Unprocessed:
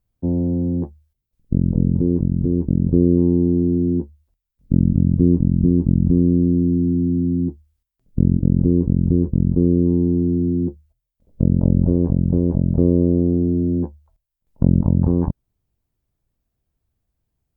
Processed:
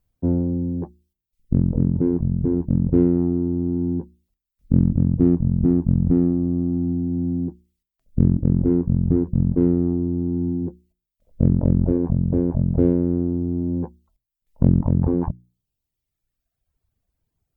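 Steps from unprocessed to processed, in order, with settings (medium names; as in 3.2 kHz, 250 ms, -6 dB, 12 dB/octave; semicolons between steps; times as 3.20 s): hum notches 60/120/180/240/300/360 Hz; reverb removal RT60 1.3 s; in parallel at -9 dB: saturation -21.5 dBFS, distortion -6 dB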